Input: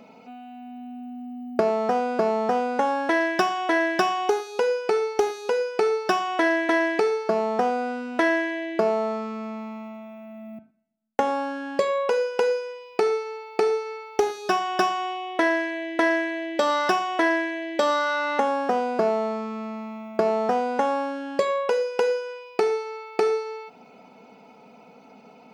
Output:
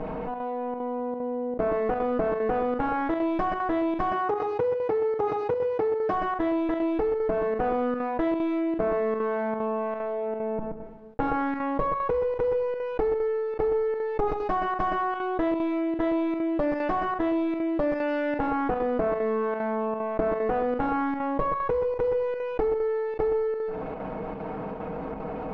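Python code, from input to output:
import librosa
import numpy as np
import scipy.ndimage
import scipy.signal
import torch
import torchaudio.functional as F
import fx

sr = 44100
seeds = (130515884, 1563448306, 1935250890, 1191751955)

y = fx.lower_of_two(x, sr, delay_ms=6.4)
y = y + 10.0 ** (-11.0 / 20.0) * np.pad(y, (int(125 * sr / 1000.0), 0))[:len(y)]
y = fx.rider(y, sr, range_db=4, speed_s=0.5)
y = fx.highpass(y, sr, hz=86.0, slope=24, at=(4.12, 6.14))
y = fx.chopper(y, sr, hz=2.5, depth_pct=65, duty_pct=85)
y = scipy.signal.sosfilt(scipy.signal.bessel(2, 800.0, 'lowpass', norm='mag', fs=sr, output='sos'), y)
y = fx.env_flatten(y, sr, amount_pct=70)
y = y * 10.0 ** (-3.5 / 20.0)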